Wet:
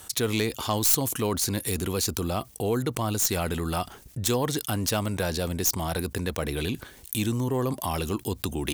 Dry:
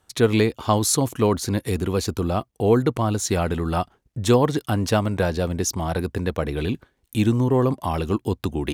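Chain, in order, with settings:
stylus tracing distortion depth 0.066 ms
first-order pre-emphasis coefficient 0.8
envelope flattener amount 50%

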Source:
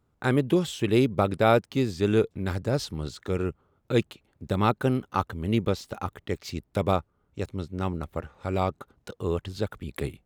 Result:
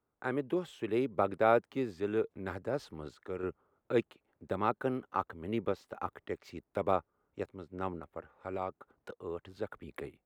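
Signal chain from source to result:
high-shelf EQ 4,300 Hz +9 dB
sample-and-hold tremolo
three-way crossover with the lows and the highs turned down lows −12 dB, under 270 Hz, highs −20 dB, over 2,200 Hz
level −3 dB

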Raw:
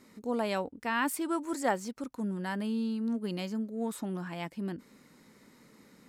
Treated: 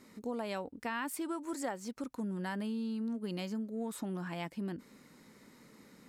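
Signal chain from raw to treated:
downward compressor 6 to 1, threshold −34 dBFS, peak gain reduction 11 dB

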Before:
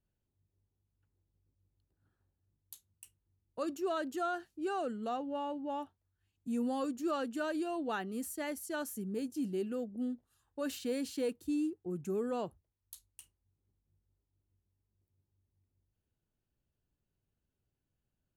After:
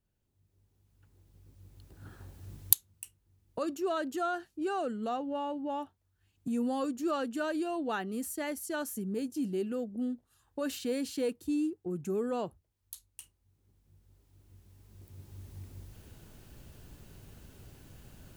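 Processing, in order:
camcorder AGC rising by 12 dB per second
level +2.5 dB

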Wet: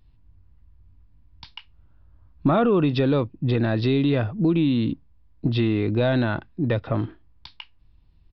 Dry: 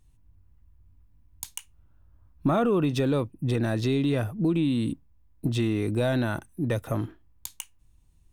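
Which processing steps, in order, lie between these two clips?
downsampling to 11,025 Hz
level +4 dB

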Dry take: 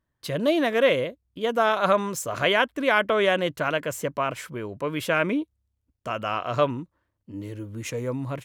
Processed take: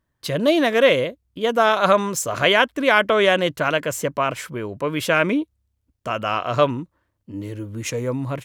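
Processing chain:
dynamic equaliser 5,600 Hz, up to +4 dB, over −39 dBFS, Q 0.87
level +4.5 dB

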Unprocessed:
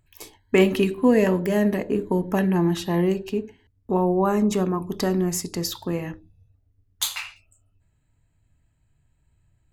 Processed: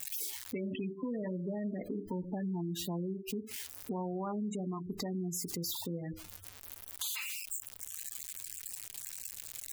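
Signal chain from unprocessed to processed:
spike at every zero crossing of −21.5 dBFS
gate on every frequency bin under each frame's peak −15 dB strong
dynamic equaliser 410 Hz, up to −5 dB, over −34 dBFS, Q 2
brickwall limiter −19 dBFS, peak gain reduction 9.5 dB
downward compressor 3 to 1, threshold −32 dBFS, peak gain reduction 8 dB
floating-point word with a short mantissa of 8 bits
level −4 dB

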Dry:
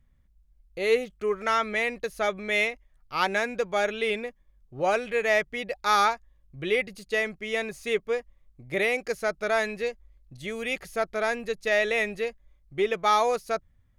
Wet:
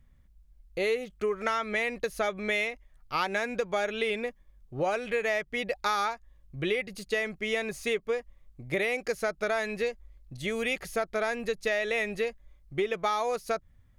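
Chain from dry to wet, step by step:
downward compressor, threshold −29 dBFS, peak gain reduction 11.5 dB
level +3.5 dB

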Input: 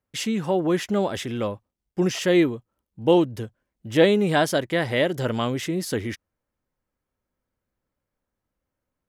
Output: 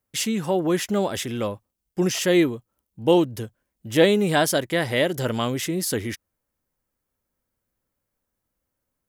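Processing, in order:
high-shelf EQ 6,900 Hz +12 dB

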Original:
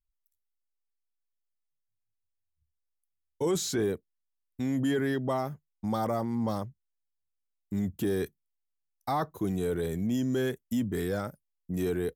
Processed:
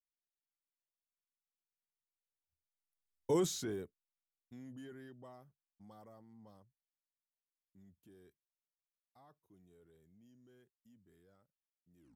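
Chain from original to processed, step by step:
turntable brake at the end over 0.34 s
source passing by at 0:03.30, 12 m/s, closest 1.7 metres
level −2.5 dB

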